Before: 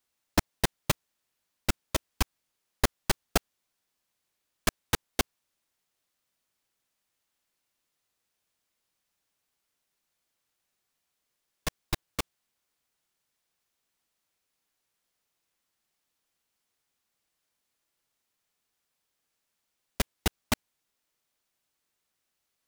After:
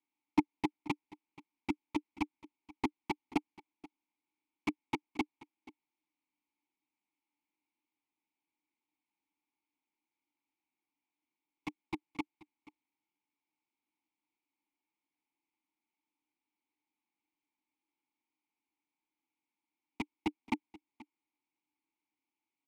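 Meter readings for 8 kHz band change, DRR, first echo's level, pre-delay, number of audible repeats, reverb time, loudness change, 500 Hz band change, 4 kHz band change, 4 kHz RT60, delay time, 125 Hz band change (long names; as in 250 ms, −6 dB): −25.0 dB, no reverb audible, −20.5 dB, no reverb audible, 1, no reverb audible, −7.0 dB, −9.5 dB, −15.5 dB, no reverb audible, 481 ms, −15.5 dB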